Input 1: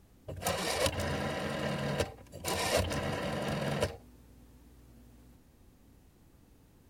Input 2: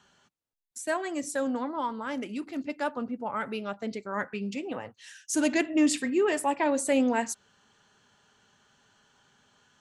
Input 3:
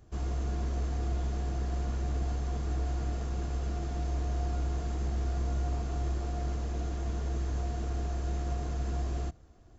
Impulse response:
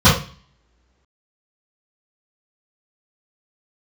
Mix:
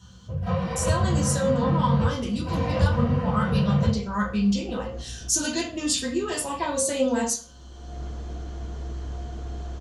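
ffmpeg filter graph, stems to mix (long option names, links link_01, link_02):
-filter_complex "[0:a]acrossover=split=3900[link_01][link_02];[link_02]acompressor=threshold=-51dB:ratio=4:attack=1:release=60[link_03];[link_01][link_03]amix=inputs=2:normalize=0,volume=-18dB,asplit=2[link_04][link_05];[link_05]volume=-6dB[link_06];[1:a]highpass=frequency=190:width=0.5412,highpass=frequency=190:width=1.3066,acompressor=threshold=-28dB:ratio=2,aexciter=amount=9.2:drive=2.5:freq=3300,volume=-4.5dB,asplit=3[link_07][link_08][link_09];[link_08]volume=-18dB[link_10];[2:a]adelay=1550,volume=-1dB[link_11];[link_09]apad=whole_len=499916[link_12];[link_11][link_12]sidechaincompress=threshold=-44dB:ratio=8:attack=23:release=390[link_13];[3:a]atrim=start_sample=2205[link_14];[link_06][link_10]amix=inputs=2:normalize=0[link_15];[link_15][link_14]afir=irnorm=-1:irlink=0[link_16];[link_04][link_07][link_13][link_16]amix=inputs=4:normalize=0,highshelf=frequency=4000:gain=-10"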